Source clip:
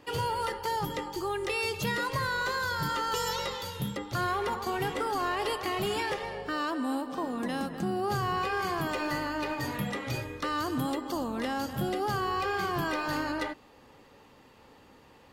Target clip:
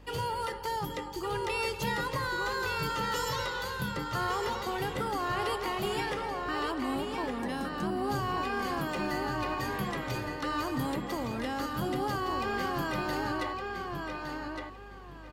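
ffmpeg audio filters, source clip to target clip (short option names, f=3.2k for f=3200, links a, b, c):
-filter_complex "[0:a]aeval=exprs='val(0)+0.00355*(sin(2*PI*50*n/s)+sin(2*PI*2*50*n/s)/2+sin(2*PI*3*50*n/s)/3+sin(2*PI*4*50*n/s)/4+sin(2*PI*5*50*n/s)/5)':c=same,asplit=2[a][b];[b]adelay=1163,lowpass=f=5k:p=1,volume=-4dB,asplit=2[c][d];[d]adelay=1163,lowpass=f=5k:p=1,volume=0.24,asplit=2[e][f];[f]adelay=1163,lowpass=f=5k:p=1,volume=0.24[g];[c][e][g]amix=inputs=3:normalize=0[h];[a][h]amix=inputs=2:normalize=0,volume=-2.5dB"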